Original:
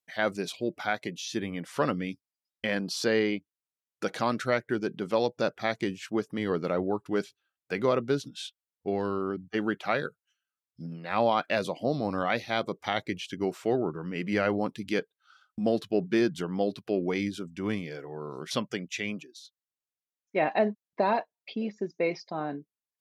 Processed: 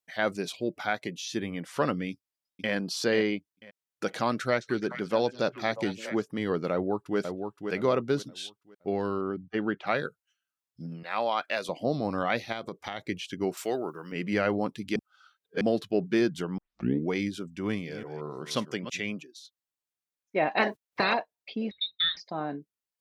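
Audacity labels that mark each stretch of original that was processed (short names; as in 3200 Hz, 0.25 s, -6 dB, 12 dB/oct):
2.100000	2.720000	echo throw 0.49 s, feedback 20%, level -6.5 dB
4.270000	6.220000	delay with a stepping band-pass 0.213 s, band-pass from 5100 Hz, each repeat -1.4 oct, level -5 dB
6.720000	7.180000	echo throw 0.52 s, feedback 30%, level -6 dB
9.210000	9.870000	air absorption 170 m
11.030000	11.690000	HPF 770 Hz 6 dB/oct
12.520000	13.010000	compressor 5:1, threshold -31 dBFS
13.570000	14.120000	RIAA curve recording
14.960000	15.610000	reverse
16.580000	16.580000	tape start 0.50 s
17.690000	19.000000	reverse delay 0.173 s, level -11 dB
20.570000	21.130000	spectral limiter ceiling under each frame's peak by 26 dB
21.710000	22.170000	inverted band carrier 4000 Hz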